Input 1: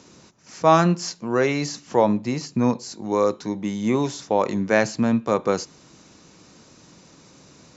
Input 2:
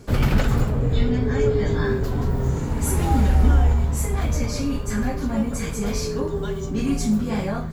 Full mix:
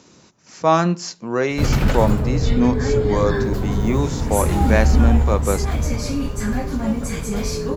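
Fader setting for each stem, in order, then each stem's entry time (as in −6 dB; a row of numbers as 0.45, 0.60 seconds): 0.0, +1.5 decibels; 0.00, 1.50 seconds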